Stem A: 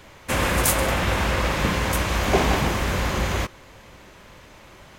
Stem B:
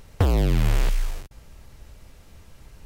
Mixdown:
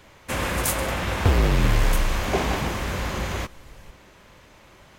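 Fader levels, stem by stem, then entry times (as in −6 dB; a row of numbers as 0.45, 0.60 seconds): −4.0, 0.0 decibels; 0.00, 1.05 seconds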